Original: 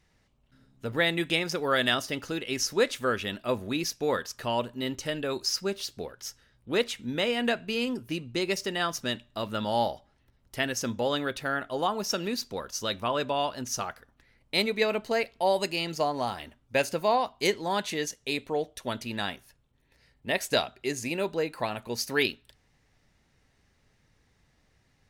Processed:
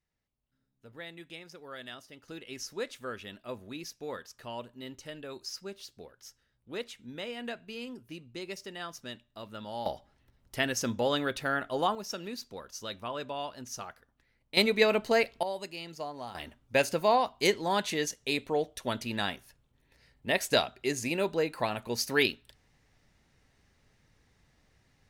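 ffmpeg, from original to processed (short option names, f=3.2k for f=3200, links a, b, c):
-af "asetnsamples=n=441:p=0,asendcmd='2.28 volume volume -11.5dB;9.86 volume volume -0.5dB;11.95 volume volume -8.5dB;14.57 volume volume 2dB;15.43 volume volume -11dB;16.35 volume volume 0dB',volume=-19dB"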